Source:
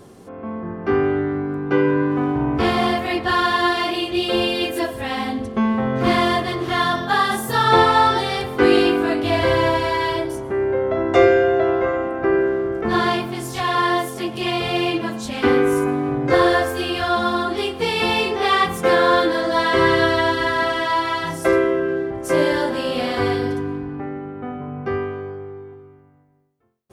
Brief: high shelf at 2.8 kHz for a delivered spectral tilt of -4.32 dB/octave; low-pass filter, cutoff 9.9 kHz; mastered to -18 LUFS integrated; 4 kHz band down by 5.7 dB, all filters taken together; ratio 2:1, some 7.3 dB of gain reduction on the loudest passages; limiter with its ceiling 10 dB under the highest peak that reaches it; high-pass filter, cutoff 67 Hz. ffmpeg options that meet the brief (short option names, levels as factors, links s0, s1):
-af "highpass=67,lowpass=9900,highshelf=f=2800:g=-4.5,equalizer=f=4000:t=o:g=-4,acompressor=threshold=0.0708:ratio=2,volume=2.99,alimiter=limit=0.335:level=0:latency=1"